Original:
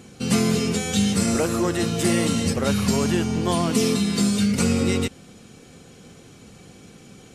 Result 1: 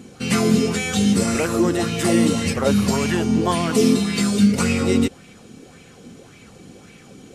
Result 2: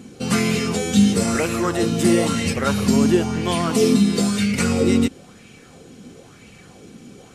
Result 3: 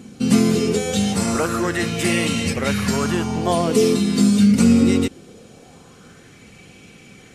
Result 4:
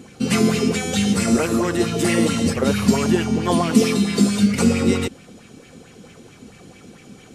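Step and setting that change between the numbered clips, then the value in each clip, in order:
sweeping bell, rate: 1.8 Hz, 1 Hz, 0.22 Hz, 4.5 Hz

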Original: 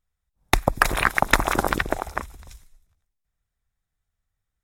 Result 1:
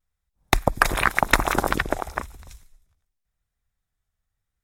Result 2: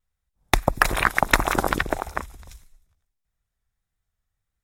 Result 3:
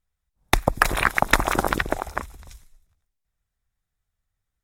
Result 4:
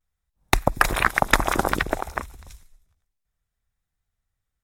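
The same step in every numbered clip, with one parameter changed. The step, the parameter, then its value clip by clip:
vibrato, rate: 0.92 Hz, 1.6 Hz, 8.6 Hz, 0.56 Hz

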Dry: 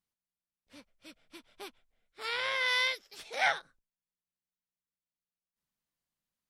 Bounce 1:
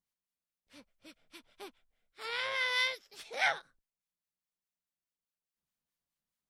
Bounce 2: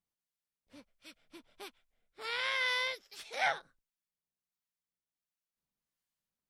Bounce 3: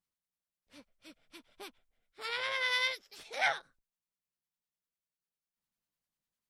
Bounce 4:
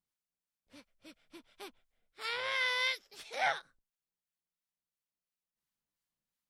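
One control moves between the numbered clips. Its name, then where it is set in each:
harmonic tremolo, rate: 4.8 Hz, 1.4 Hz, 10 Hz, 2.9 Hz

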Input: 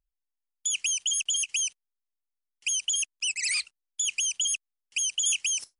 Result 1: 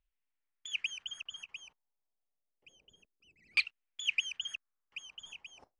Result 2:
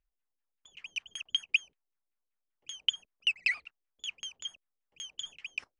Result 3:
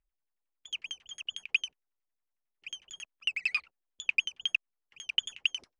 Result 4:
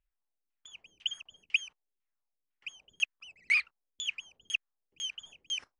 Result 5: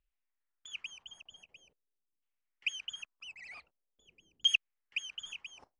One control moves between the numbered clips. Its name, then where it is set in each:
LFO low-pass, rate: 0.28 Hz, 5.2 Hz, 11 Hz, 2 Hz, 0.45 Hz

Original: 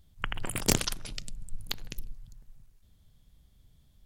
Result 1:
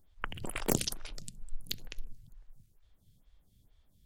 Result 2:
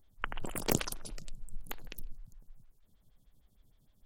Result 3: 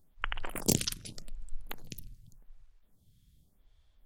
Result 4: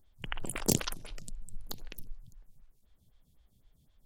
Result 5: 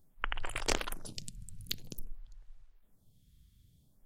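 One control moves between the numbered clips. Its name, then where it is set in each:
lamp-driven phase shifter, rate: 2.2 Hz, 6.5 Hz, 0.86 Hz, 3.9 Hz, 0.51 Hz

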